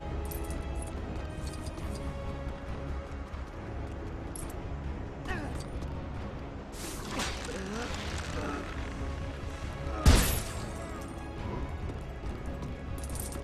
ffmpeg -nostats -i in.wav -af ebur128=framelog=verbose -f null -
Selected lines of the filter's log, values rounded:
Integrated loudness:
  I:         -36.0 LUFS
  Threshold: -46.0 LUFS
Loudness range:
  LRA:         7.5 LU
  Threshold: -55.6 LUFS
  LRA low:   -39.6 LUFS
  LRA high:  -32.0 LUFS